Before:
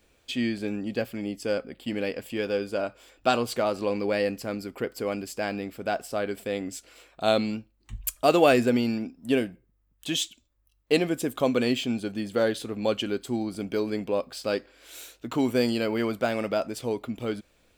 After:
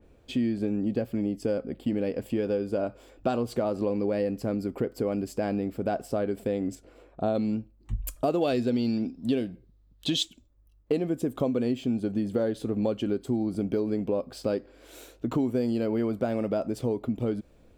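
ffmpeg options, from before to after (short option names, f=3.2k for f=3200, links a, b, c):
-filter_complex "[0:a]asettb=1/sr,asplit=3[a][b][c];[a]atrim=end=6.754[d];[b]atrim=start=6.75:end=7.35,asetpts=PTS-STARTPTS,afade=t=in:d=0.004:c=qsin,afade=t=out:st=0.596:d=0.004:c=qsin,highshelf=f=2.3k:g=-11.5[e];[c]atrim=start=7.346[f];[d][e]acrossfade=d=0.004:c1=hsin:c2=qsin[g];[g][f]acrossfade=d=0.004:c1=qsin:c2=hsin,asettb=1/sr,asplit=3[h][i][j];[h]atrim=end=8.414[k];[i]atrim=start=8.41:end=10.23,asetpts=PTS-STARTPTS,afade=t=in:d=0.004:c=qsin,afade=t=out:st=1.816:d=0.004:c=qsin,equalizer=f=4k:w=1.4:g=15[l];[j]atrim=start=10.226[m];[k][l]acrossfade=d=0.004:c1=hsin:c2=qsin[n];[n][m]acrossfade=d=0.004:c1=qsin:c2=hsin,tiltshelf=f=1.1k:g=10,acompressor=threshold=-25dB:ratio=4,adynamicequalizer=threshold=0.00316:dfrequency=3400:dqfactor=0.7:tfrequency=3400:tqfactor=0.7:attack=5:release=100:ratio=0.375:range=2.5:mode=boostabove:tftype=highshelf"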